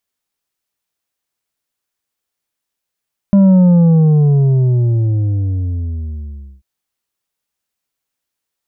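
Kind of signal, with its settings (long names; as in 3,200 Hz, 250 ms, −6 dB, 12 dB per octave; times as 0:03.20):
bass drop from 200 Hz, over 3.29 s, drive 6 dB, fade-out 3.13 s, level −6 dB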